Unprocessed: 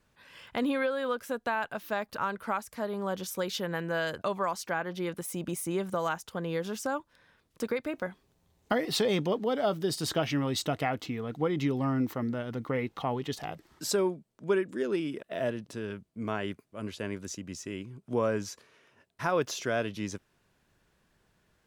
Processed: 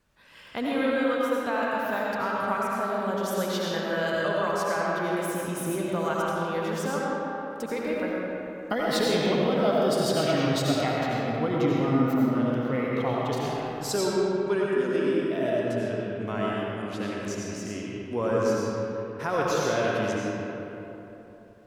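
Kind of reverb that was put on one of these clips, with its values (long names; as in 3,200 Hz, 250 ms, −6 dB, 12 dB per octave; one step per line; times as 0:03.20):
comb and all-pass reverb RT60 3.4 s, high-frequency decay 0.5×, pre-delay 50 ms, DRR −5 dB
level −1 dB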